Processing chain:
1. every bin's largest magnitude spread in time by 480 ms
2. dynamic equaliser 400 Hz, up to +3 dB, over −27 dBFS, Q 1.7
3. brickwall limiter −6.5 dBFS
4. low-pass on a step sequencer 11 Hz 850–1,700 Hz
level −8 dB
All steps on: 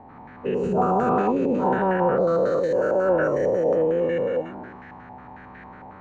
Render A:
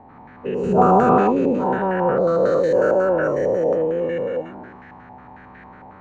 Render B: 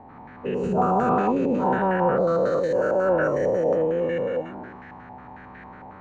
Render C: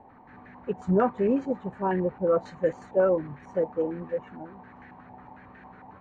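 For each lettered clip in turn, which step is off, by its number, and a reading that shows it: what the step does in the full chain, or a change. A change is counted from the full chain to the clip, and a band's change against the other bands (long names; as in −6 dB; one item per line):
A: 3, average gain reduction 1.5 dB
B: 2, change in momentary loudness spread +10 LU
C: 1, 2 kHz band −4.5 dB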